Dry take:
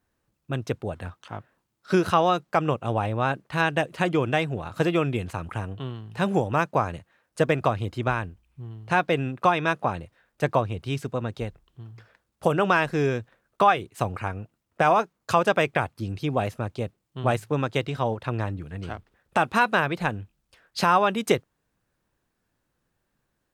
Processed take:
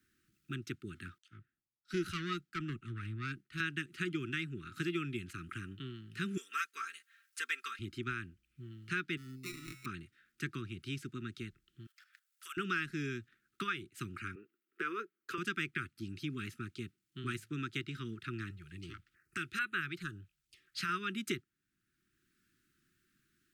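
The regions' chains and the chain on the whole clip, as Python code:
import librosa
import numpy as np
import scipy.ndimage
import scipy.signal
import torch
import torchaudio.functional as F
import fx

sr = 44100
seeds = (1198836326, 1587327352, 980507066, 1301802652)

y = fx.chain(x, sr, fx.low_shelf(hz=97.0, db=11.0),
    fx.tube_stage(drive_db=17.0, bias=0.4),
    fx.band_widen(depth_pct=100), at=(1.18, 3.6))
y = fx.chain(y, sr, fx.highpass(hz=610.0, slope=24),
    fx.high_shelf(hz=4700.0, db=7.5),
    fx.comb(ms=4.4, depth=0.84), at=(6.37, 7.79))
y = fx.chain(y, sr, fx.sample_hold(seeds[0], rate_hz=1600.0, jitter_pct=0),
    fx.comb_fb(f0_hz=130.0, decay_s=1.2, harmonics='all', damping=0.0, mix_pct=80), at=(9.17, 9.86))
y = fx.chain(y, sr, fx.highpass(hz=1000.0, slope=24),
    fx.high_shelf(hz=6000.0, db=10.5),
    fx.level_steps(step_db=12), at=(11.86, 12.57))
y = fx.chain(y, sr, fx.highpass_res(hz=450.0, q=5.0),
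    fx.peak_eq(hz=6400.0, db=-12.5, octaves=2.2), at=(14.35, 15.38))
y = fx.chain(y, sr, fx.peak_eq(hz=230.0, db=-11.5, octaves=0.49),
    fx.filter_held_notch(hz=4.6, low_hz=280.0, high_hz=5200.0), at=(18.5, 20.89))
y = scipy.signal.sosfilt(scipy.signal.cheby1(4, 1.0, [370.0, 1300.0], 'bandstop', fs=sr, output='sos'), y)
y = fx.low_shelf(y, sr, hz=120.0, db=-12.0)
y = fx.band_squash(y, sr, depth_pct=40)
y = y * 10.0 ** (-8.5 / 20.0)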